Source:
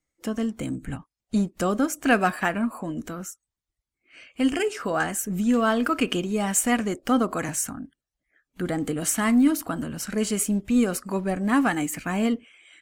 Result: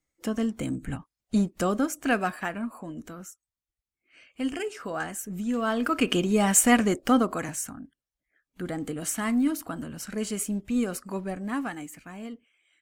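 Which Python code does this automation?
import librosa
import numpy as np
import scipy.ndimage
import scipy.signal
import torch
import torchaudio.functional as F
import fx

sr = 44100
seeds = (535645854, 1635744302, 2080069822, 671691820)

y = fx.gain(x, sr, db=fx.line((1.53, -0.5), (2.43, -7.0), (5.53, -7.0), (6.28, 3.0), (6.95, 3.0), (7.57, -5.5), (11.19, -5.5), (12.16, -15.5)))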